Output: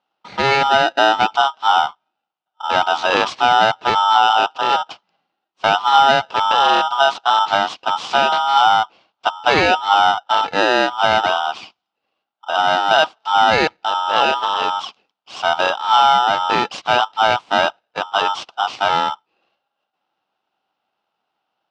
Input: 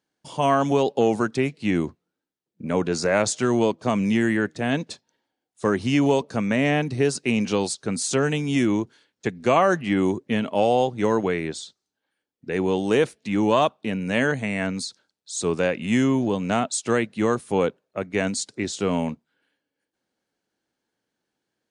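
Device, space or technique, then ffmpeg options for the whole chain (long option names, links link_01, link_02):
ring modulator pedal into a guitar cabinet: -af "aeval=exprs='val(0)*sgn(sin(2*PI*1100*n/s))':channel_layout=same,highpass=110,equalizer=frequency=200:width_type=q:width=4:gain=3,equalizer=frequency=320:width_type=q:width=4:gain=3,equalizer=frequency=770:width_type=q:width=4:gain=8,equalizer=frequency=1100:width_type=q:width=4:gain=9,equalizer=frequency=1800:width_type=q:width=4:gain=-6,equalizer=frequency=2900:width_type=q:width=4:gain=4,lowpass=frequency=4500:width=0.5412,lowpass=frequency=4500:width=1.3066,volume=3dB"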